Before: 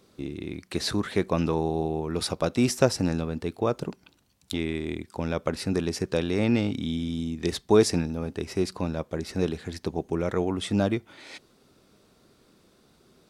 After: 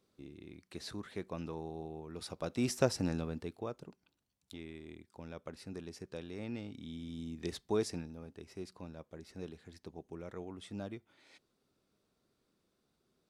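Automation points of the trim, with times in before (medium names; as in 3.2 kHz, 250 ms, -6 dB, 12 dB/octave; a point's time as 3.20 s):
2.20 s -16.5 dB
2.75 s -8.5 dB
3.32 s -8.5 dB
3.82 s -18.5 dB
6.69 s -18.5 dB
7.36 s -11 dB
8.37 s -18.5 dB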